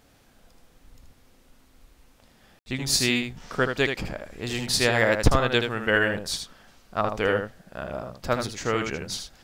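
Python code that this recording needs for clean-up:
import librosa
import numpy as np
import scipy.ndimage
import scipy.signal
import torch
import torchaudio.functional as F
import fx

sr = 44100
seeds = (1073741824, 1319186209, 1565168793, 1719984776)

y = fx.fix_ambience(x, sr, seeds[0], print_start_s=0.0, print_end_s=0.5, start_s=2.59, end_s=2.66)
y = fx.fix_echo_inverse(y, sr, delay_ms=78, level_db=-6.5)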